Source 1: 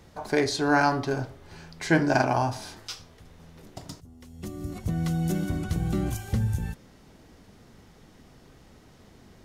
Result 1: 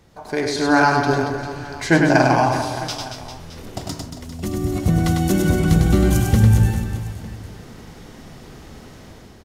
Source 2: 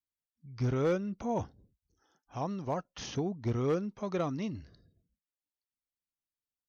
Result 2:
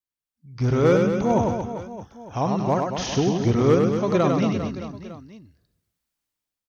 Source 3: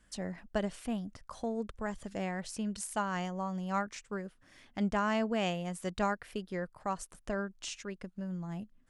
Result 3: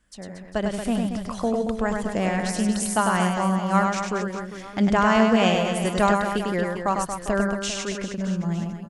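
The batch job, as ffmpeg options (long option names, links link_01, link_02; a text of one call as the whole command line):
ffmpeg -i in.wav -filter_complex "[0:a]dynaudnorm=framelen=240:gausssize=5:maxgain=12dB,asplit=2[link_01][link_02];[link_02]aecho=0:1:100|230|399|618.7|904.3:0.631|0.398|0.251|0.158|0.1[link_03];[link_01][link_03]amix=inputs=2:normalize=0,volume=-1dB" out.wav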